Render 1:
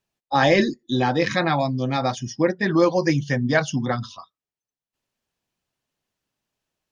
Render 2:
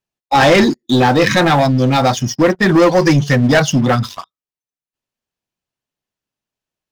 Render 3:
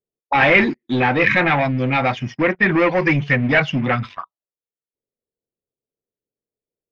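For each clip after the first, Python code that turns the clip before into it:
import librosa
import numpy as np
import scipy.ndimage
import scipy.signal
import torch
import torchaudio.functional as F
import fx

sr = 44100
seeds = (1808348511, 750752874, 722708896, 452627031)

y1 = fx.leveller(x, sr, passes=3)
y1 = y1 * librosa.db_to_amplitude(1.0)
y2 = fx.envelope_lowpass(y1, sr, base_hz=460.0, top_hz=2300.0, q=4.5, full_db=-17.0, direction='up')
y2 = y2 * librosa.db_to_amplitude(-7.0)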